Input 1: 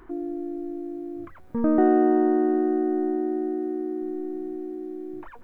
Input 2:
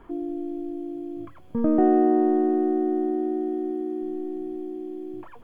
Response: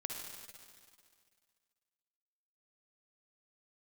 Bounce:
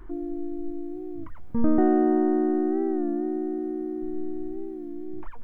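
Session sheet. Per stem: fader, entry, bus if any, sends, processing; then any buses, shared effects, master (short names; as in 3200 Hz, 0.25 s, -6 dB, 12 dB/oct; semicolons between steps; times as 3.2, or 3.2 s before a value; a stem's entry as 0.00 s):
-3.5 dB, 0.00 s, no send, low shelf 200 Hz +4 dB
-16.5 dB, 0.00 s, no send, dry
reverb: off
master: low shelf 77 Hz +12 dB; record warp 33 1/3 rpm, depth 100 cents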